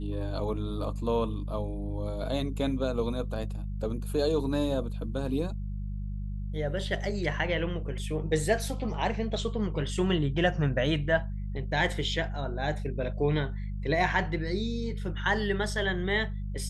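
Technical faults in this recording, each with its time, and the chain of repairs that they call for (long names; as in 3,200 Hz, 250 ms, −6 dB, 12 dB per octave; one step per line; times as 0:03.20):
mains hum 50 Hz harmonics 4 −34 dBFS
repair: hum removal 50 Hz, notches 4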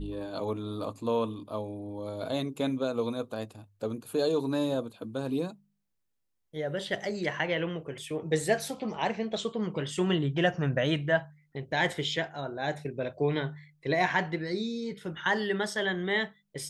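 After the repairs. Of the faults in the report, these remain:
none of them is left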